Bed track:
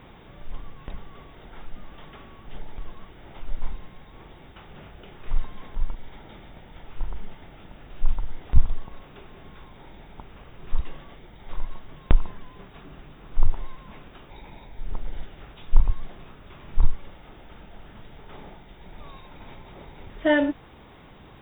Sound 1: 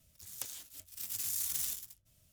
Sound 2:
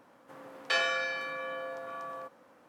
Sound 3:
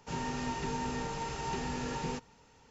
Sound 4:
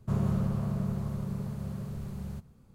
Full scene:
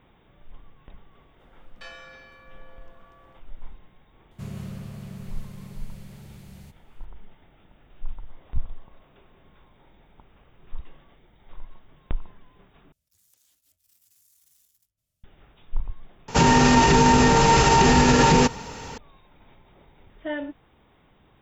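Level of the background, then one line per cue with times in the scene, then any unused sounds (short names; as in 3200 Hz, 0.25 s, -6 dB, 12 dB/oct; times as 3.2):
bed track -10.5 dB
1.11 add 2 -15 dB
4.31 add 4 -7.5 dB + resonant high shelf 1600 Hz +9.5 dB, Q 1.5
8.2 add 4 -18 dB + elliptic band-pass 520–1200 Hz
12.92 replace with 1 -14.5 dB + compressor 4:1, threshold -45 dBFS
16.28 replace with 3 -6.5 dB + maximiser +30.5 dB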